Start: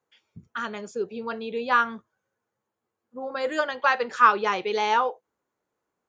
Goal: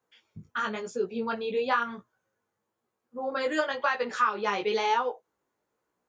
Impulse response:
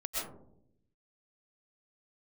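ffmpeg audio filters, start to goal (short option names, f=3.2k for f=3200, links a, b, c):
-af "acompressor=threshold=-23dB:ratio=10,flanger=delay=16:depth=4:speed=1,volume=4dB"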